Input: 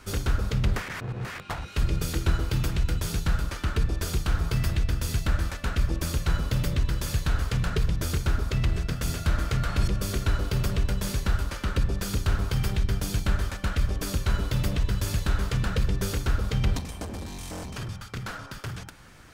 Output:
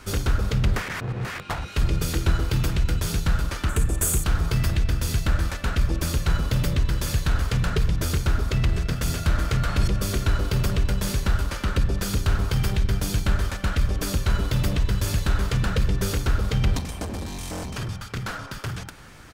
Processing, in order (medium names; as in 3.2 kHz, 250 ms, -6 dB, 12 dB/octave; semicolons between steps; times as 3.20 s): 3.69–4.24 s: resonant high shelf 6.3 kHz +9 dB, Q 3; in parallel at -7.5 dB: saturation -27 dBFS, distortion -8 dB; on the sum: speakerphone echo 340 ms, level -20 dB; trim +1.5 dB